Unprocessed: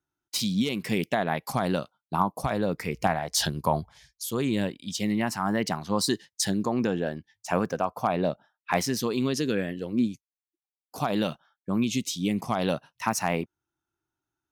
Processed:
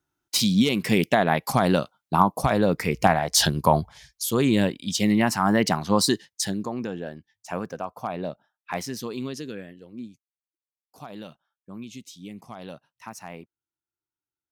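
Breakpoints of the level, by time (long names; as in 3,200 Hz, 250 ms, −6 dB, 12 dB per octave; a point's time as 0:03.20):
0:05.93 +6 dB
0:06.81 −5 dB
0:09.22 −5 dB
0:09.83 −13 dB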